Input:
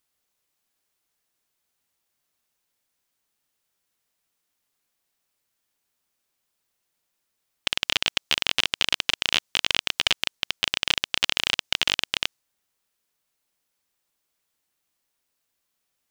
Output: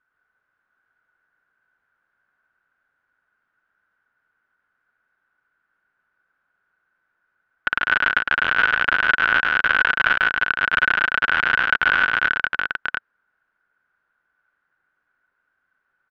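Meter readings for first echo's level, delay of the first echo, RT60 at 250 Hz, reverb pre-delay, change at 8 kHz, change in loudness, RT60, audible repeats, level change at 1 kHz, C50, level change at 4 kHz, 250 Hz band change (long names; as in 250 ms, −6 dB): −4.0 dB, 105 ms, no reverb audible, no reverb audible, below −20 dB, +5.0 dB, no reverb audible, 3, +14.0 dB, no reverb audible, −7.5 dB, +4.0 dB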